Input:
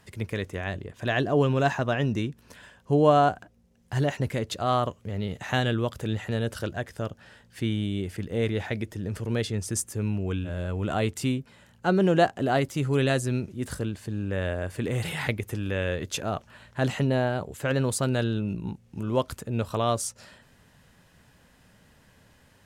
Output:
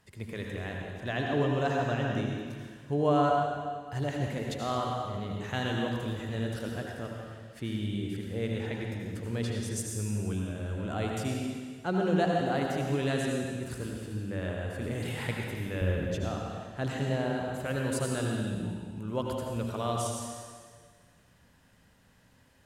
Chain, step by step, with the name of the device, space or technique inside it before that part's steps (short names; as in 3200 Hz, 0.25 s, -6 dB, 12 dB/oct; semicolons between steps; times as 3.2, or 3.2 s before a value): 15.81–16.26 tilt -3 dB/oct; stairwell (reverb RT60 1.7 s, pre-delay 72 ms, DRR -0.5 dB); gain -8 dB